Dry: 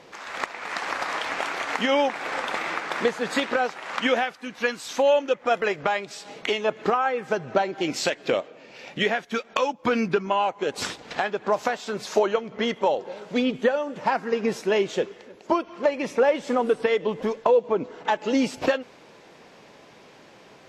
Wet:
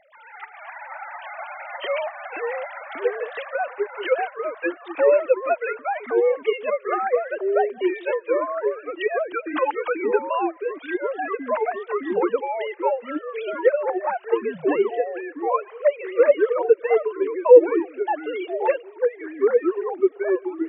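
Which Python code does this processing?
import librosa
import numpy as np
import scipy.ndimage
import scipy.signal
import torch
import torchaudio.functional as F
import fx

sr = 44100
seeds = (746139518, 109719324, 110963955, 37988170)

y = fx.sine_speech(x, sr)
y = fx.echo_pitch(y, sr, ms=173, semitones=-3, count=2, db_per_echo=-3.0)
y = y * librosa.db_to_amplitude(1.0)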